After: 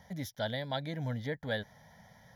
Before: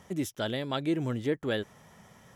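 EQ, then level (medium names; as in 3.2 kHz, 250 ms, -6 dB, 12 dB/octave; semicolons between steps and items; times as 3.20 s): static phaser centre 1.8 kHz, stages 8; 0.0 dB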